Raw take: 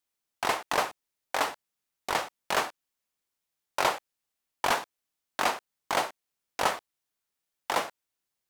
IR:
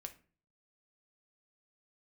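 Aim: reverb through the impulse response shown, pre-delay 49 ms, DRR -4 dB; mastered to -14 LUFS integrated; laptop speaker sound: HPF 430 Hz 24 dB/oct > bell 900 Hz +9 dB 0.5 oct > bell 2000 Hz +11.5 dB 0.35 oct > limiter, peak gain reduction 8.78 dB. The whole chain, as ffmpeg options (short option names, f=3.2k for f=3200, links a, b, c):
-filter_complex "[0:a]asplit=2[a][b];[1:a]atrim=start_sample=2205,adelay=49[c];[b][c]afir=irnorm=-1:irlink=0,volume=8.5dB[d];[a][d]amix=inputs=2:normalize=0,highpass=f=430:w=0.5412,highpass=f=430:w=1.3066,equalizer=f=900:t=o:w=0.5:g=9,equalizer=f=2k:t=o:w=0.35:g=11.5,volume=10.5dB,alimiter=limit=-0.5dB:level=0:latency=1"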